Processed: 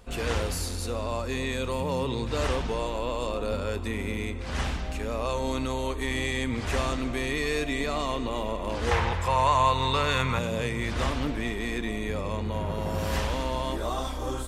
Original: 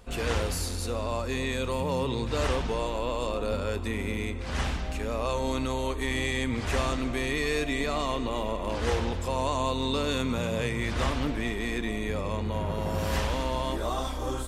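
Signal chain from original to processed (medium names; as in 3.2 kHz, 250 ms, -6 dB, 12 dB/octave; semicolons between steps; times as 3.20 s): 8.91–10.39 s: graphic EQ 125/250/1000/2000 Hz +9/-9/+8/+9 dB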